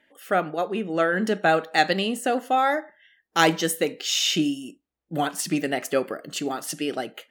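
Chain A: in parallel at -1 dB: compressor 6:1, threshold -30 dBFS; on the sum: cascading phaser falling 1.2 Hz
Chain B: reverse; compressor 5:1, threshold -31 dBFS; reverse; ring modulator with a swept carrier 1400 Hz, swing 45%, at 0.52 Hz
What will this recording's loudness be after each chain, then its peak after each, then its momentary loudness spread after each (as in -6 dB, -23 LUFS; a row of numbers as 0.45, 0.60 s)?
-24.0, -36.0 LUFS; -5.5, -20.5 dBFS; 7, 5 LU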